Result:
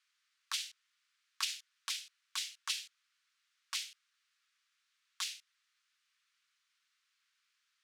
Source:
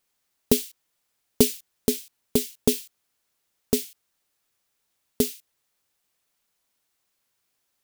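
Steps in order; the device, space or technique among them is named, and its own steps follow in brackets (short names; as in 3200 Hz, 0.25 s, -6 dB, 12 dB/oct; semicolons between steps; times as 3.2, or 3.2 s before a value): valve radio (BPF 80–4700 Hz; tube stage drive 13 dB, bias 0.5; core saturation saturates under 450 Hz); steep high-pass 1200 Hz 48 dB/oct; gain +5 dB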